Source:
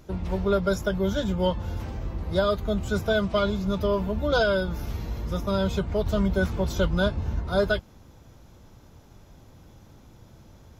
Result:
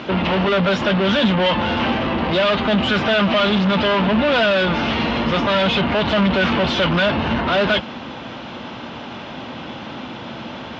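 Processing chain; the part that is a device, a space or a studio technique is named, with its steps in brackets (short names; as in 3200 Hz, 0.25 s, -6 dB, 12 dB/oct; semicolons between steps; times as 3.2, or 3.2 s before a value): overdrive pedal into a guitar cabinet (overdrive pedal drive 35 dB, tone 5500 Hz, clips at -10.5 dBFS; speaker cabinet 77–3900 Hz, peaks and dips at 95 Hz -6 dB, 240 Hz +8 dB, 430 Hz -4 dB, 2900 Hz +7 dB)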